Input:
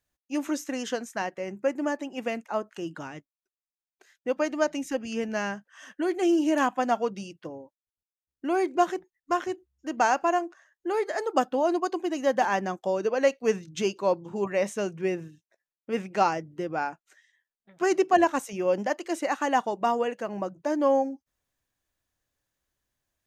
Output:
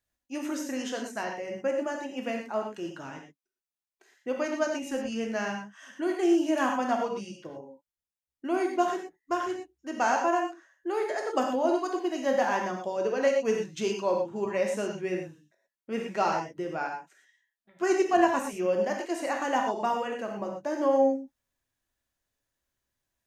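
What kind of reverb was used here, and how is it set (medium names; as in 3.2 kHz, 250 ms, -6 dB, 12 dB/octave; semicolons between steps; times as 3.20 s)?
gated-style reverb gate 140 ms flat, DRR 1 dB; trim -4 dB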